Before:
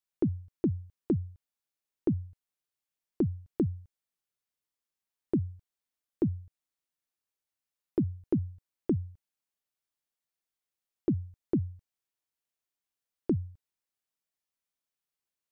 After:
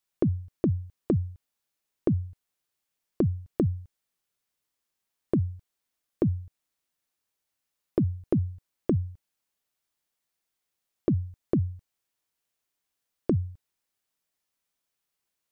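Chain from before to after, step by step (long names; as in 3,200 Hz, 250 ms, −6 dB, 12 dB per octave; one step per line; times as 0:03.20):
dynamic equaliser 300 Hz, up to −6 dB, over −38 dBFS, Q 0.91
level +7 dB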